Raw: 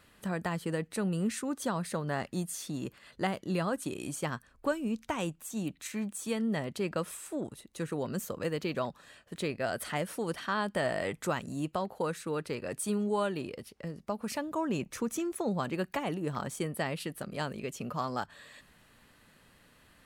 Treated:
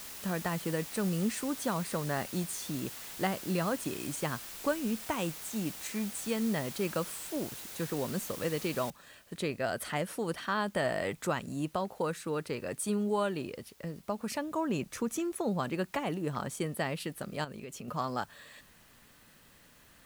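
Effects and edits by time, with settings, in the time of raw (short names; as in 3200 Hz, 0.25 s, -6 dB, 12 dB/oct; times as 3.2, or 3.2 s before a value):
8.9 noise floor step -45 dB -64 dB
17.44–17.88 compressor, threshold -39 dBFS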